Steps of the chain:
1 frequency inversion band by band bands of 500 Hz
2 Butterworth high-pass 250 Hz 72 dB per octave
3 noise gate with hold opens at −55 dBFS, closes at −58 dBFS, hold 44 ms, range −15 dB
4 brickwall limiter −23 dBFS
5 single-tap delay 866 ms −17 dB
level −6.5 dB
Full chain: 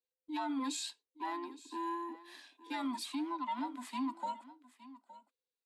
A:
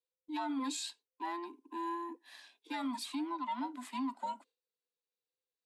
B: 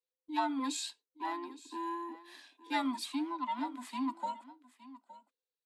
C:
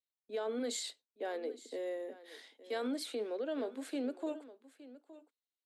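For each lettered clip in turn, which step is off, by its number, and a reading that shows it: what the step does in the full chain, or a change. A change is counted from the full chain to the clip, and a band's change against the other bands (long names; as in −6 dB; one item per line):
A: 5, change in momentary loudness spread −10 LU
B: 4, change in crest factor +6.5 dB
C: 1, 500 Hz band +13.5 dB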